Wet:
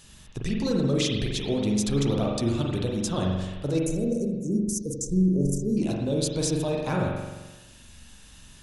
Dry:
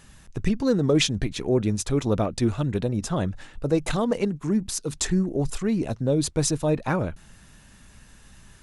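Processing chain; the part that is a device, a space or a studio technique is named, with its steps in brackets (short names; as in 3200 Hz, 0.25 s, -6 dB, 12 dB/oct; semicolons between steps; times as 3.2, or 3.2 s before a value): over-bright horn tweeter (resonant high shelf 2500 Hz +7 dB, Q 1.5; limiter -15 dBFS, peak gain reduction 11.5 dB); 3.86–5.77 Chebyshev band-stop 540–5900 Hz, order 4; spring tank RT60 1.2 s, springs 43 ms, chirp 75 ms, DRR -1 dB; gain -4 dB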